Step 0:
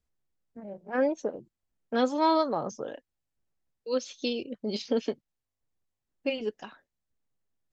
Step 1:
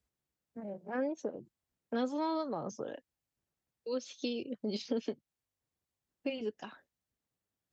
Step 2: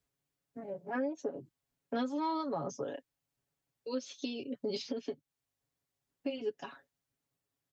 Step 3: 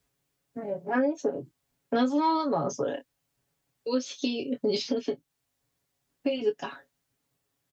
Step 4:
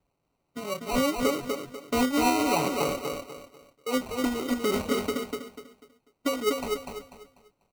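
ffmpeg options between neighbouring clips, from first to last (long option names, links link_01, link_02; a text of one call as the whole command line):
ffmpeg -i in.wav -filter_complex "[0:a]acompressor=threshold=-36dB:ratio=1.5,highpass=55,acrossover=split=360[link_01][link_02];[link_02]acompressor=threshold=-44dB:ratio=1.5[link_03];[link_01][link_03]amix=inputs=2:normalize=0" out.wav
ffmpeg -i in.wav -af "aecho=1:1:7.2:0.73,alimiter=level_in=1.5dB:limit=-24dB:level=0:latency=1:release=399,volume=-1.5dB" out.wav
ffmpeg -i in.wav -filter_complex "[0:a]asplit=2[link_01][link_02];[link_02]adelay=24,volume=-10.5dB[link_03];[link_01][link_03]amix=inputs=2:normalize=0,volume=8.5dB" out.wav
ffmpeg -i in.wav -filter_complex "[0:a]acrusher=samples=26:mix=1:aa=0.000001,asplit=2[link_01][link_02];[link_02]aecho=0:1:246|492|738|984:0.631|0.196|0.0606|0.0188[link_03];[link_01][link_03]amix=inputs=2:normalize=0" out.wav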